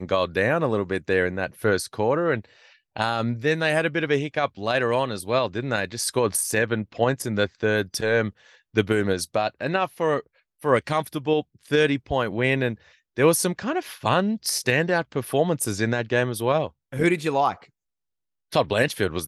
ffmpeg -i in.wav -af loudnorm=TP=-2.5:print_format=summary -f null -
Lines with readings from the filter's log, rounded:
Input Integrated:    -23.9 LUFS
Input True Peak:      -5.4 dBTP
Input LRA:             1.5 LU
Input Threshold:     -34.1 LUFS